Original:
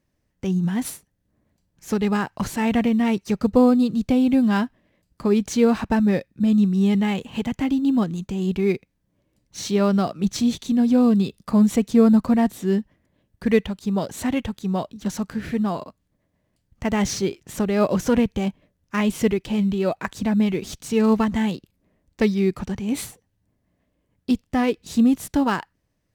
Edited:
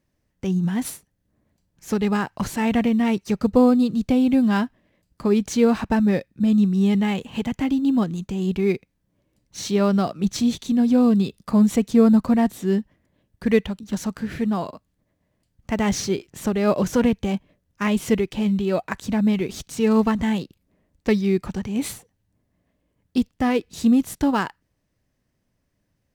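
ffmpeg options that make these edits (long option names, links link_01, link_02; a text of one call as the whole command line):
ffmpeg -i in.wav -filter_complex "[0:a]asplit=2[link_01][link_02];[link_01]atrim=end=13.792[link_03];[link_02]atrim=start=14.918[link_04];[link_03][link_04]acrossfade=duration=0.004:curve1=hsin:curve2=hsin" out.wav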